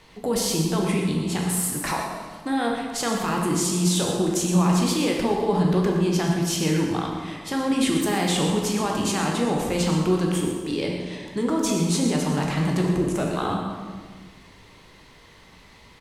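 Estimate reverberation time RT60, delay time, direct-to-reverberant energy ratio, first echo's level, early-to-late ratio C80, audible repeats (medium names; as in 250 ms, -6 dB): 1.6 s, 117 ms, -1.0 dB, -10.0 dB, 3.5 dB, 1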